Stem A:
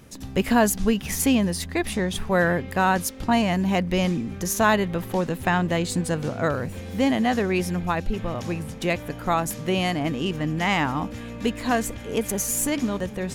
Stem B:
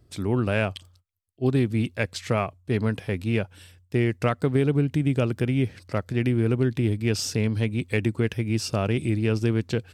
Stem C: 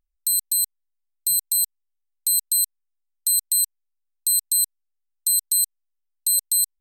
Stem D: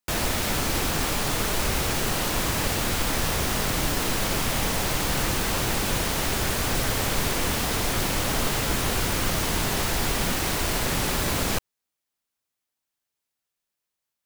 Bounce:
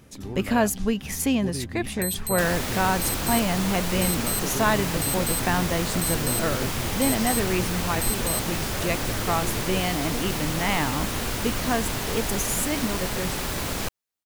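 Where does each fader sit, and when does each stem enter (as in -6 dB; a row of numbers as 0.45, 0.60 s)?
-3.0, -11.5, -9.5, -3.5 dB; 0.00, 0.00, 1.75, 2.30 s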